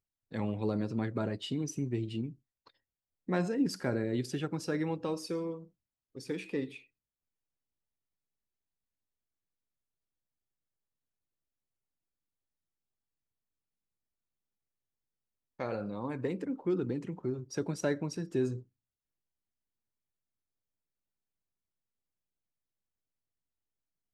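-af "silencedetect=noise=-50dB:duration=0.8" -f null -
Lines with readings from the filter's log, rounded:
silence_start: 6.80
silence_end: 15.60 | silence_duration: 8.80
silence_start: 18.62
silence_end: 24.14 | silence_duration: 5.51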